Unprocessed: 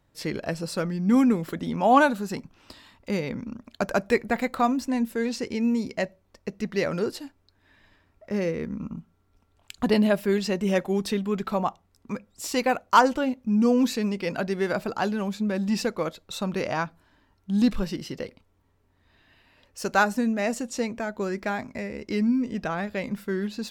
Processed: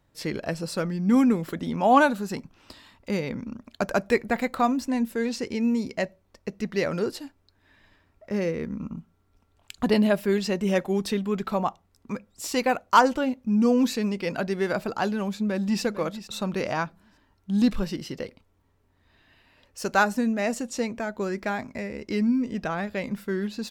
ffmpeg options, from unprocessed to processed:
-filter_complex "[0:a]asplit=2[a][b];[b]afade=t=in:st=15.3:d=0.01,afade=t=out:st=15.82:d=0.01,aecho=0:1:450|900|1350:0.211349|0.0528372|0.0132093[c];[a][c]amix=inputs=2:normalize=0"

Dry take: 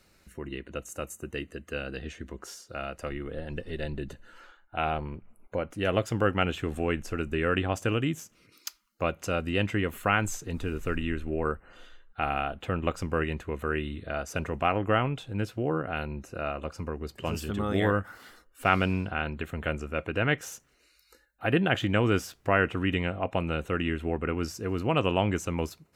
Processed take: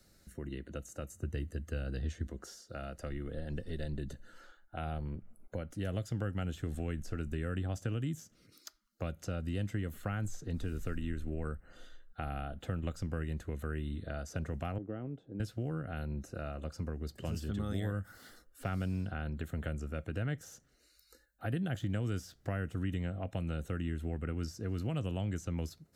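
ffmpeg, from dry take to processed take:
-filter_complex "[0:a]asettb=1/sr,asplit=3[a][b][c];[a]atrim=end=1.144[d];[b]atrim=start=1.14:end=2.27,asetpts=PTS-STARTPTS,afade=t=in:d=0.004:c=qsin,afade=t=out:st=1.126:d=0.004:c=qsin,equalizer=f=87:w=1.4:g=13[e];[c]atrim=start=2.266[f];[d][e]acrossfade=d=0.004:c1=hsin:c2=qsin[g];[g][f]acrossfade=d=0.004:c1=qsin:c2=hsin,asettb=1/sr,asplit=3[h][i][j];[h]atrim=end=14.784[k];[i]atrim=start=14.78:end=15.4,asetpts=PTS-STARTPTS,afade=t=in:d=0.004:c=qsin,afade=t=out:st=0.616:d=0.004:c=qsin,bandpass=f=340:t=q:w=1.6[l];[j]atrim=start=15.396[m];[k][l]acrossfade=d=0.004:c1=hsin:c2=qsin[n];[n][m]acrossfade=d=0.004:c1=qsin:c2=hsin,equalizer=f=400:t=o:w=0.67:g=-4,equalizer=f=1k:t=o:w=0.67:g=-11,equalizer=f=2.5k:t=o:w=0.67:g=-12,acrossover=split=180|1700|5400[o][p][q][r];[o]acompressor=threshold=-34dB:ratio=4[s];[p]acompressor=threshold=-41dB:ratio=4[t];[q]acompressor=threshold=-52dB:ratio=4[u];[r]acompressor=threshold=-58dB:ratio=4[v];[s][t][u][v]amix=inputs=4:normalize=0"

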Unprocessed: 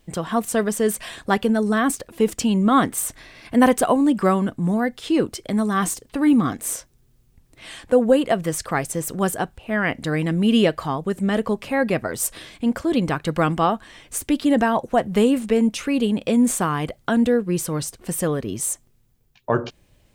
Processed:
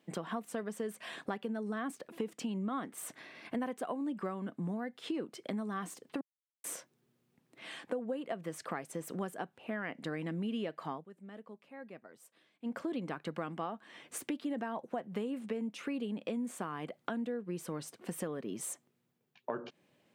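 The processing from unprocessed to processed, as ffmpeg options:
-filter_complex "[0:a]asplit=5[a][b][c][d][e];[a]atrim=end=6.21,asetpts=PTS-STARTPTS,afade=t=out:st=6.206:d=0.004:c=hsin[f];[b]atrim=start=6.21:end=6.64,asetpts=PTS-STARTPTS,volume=0[g];[c]atrim=start=6.64:end=11.07,asetpts=PTS-STARTPTS,afade=t=in:d=0.004:c=hsin,afade=t=out:st=4.28:d=0.15:silence=0.0794328[h];[d]atrim=start=11.07:end=12.62,asetpts=PTS-STARTPTS,volume=-22dB[i];[e]atrim=start=12.62,asetpts=PTS-STARTPTS,afade=t=in:d=0.15:silence=0.0794328[j];[f][g][h][i][j]concat=n=5:v=0:a=1,highpass=f=170:w=0.5412,highpass=f=170:w=1.3066,bass=f=250:g=0,treble=f=4k:g=-9,acompressor=threshold=-29dB:ratio=6,volume=-6dB"

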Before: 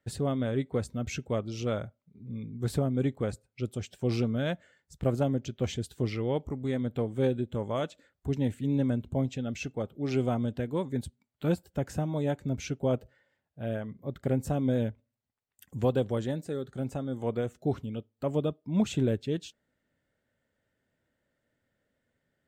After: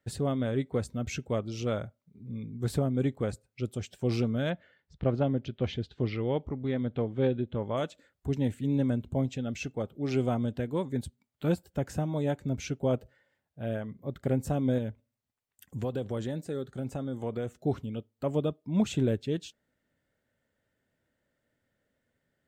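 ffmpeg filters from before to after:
-filter_complex "[0:a]asplit=3[a][b][c];[a]afade=t=out:st=4.49:d=0.02[d];[b]lowpass=f=4.3k:w=0.5412,lowpass=f=4.3k:w=1.3066,afade=t=in:st=4.49:d=0.02,afade=t=out:st=7.76:d=0.02[e];[c]afade=t=in:st=7.76:d=0.02[f];[d][e][f]amix=inputs=3:normalize=0,asettb=1/sr,asplit=3[g][h][i];[g]atrim=end=14.784[j];[h]atrim=start=14.78:end=17.54,asetpts=PTS-STARTPTS,afade=t=in:d=0.004:c=qsin,afade=t=out:st=2.756:d=0.004:c=qsin,acompressor=threshold=-28dB:ratio=4:attack=3.2:release=140:knee=1:detection=peak[k];[i]atrim=start=17.536[l];[j][k]acrossfade=d=0.004:c1=hsin:c2=qsin[m];[m][l]acrossfade=d=0.004:c1=qsin:c2=hsin"

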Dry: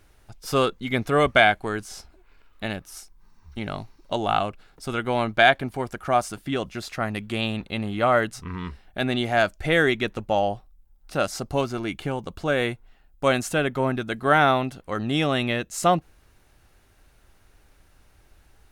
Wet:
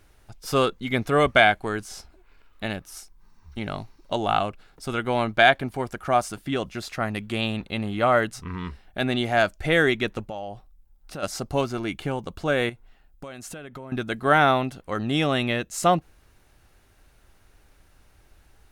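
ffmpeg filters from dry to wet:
-filter_complex "[0:a]asplit=3[a][b][c];[a]afade=t=out:st=10.26:d=0.02[d];[b]acompressor=threshold=-34dB:ratio=3:attack=3.2:release=140:knee=1:detection=peak,afade=t=in:st=10.26:d=0.02,afade=t=out:st=11.22:d=0.02[e];[c]afade=t=in:st=11.22:d=0.02[f];[d][e][f]amix=inputs=3:normalize=0,asettb=1/sr,asplit=3[g][h][i];[g]atrim=end=12.694[j];[h]atrim=start=12.69:end=13.92,asetpts=PTS-STARTPTS,afade=t=in:d=0.004:c=qsin,afade=t=out:st=1.226:d=0.004:c=qsin,acompressor=threshold=-34dB:ratio=20:attack=3.2:release=140:knee=1:detection=peak[k];[i]atrim=start=13.916[l];[j][k]acrossfade=d=0.004:c1=hsin:c2=qsin[m];[m][l]acrossfade=d=0.004:c1=qsin:c2=hsin"

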